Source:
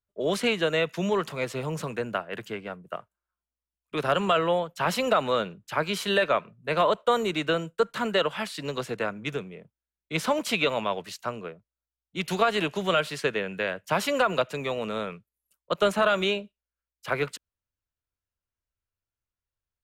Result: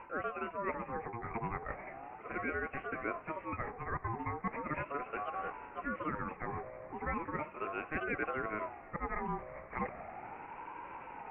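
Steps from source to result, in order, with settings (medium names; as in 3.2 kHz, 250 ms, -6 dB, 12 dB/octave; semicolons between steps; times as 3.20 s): jump at every zero crossing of -38 dBFS; steep low-pass 1.8 kHz 72 dB/octave; reverse; compression 6:1, threshold -36 dBFS, peak gain reduction 17.5 dB; reverse; granular stretch 0.57×, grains 171 ms; on a send: echo that smears into a reverb 1807 ms, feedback 46%, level -16 dB; on the sum: ring modulator with a swept carrier 760 Hz, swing 25%, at 0.37 Hz; trim +4.5 dB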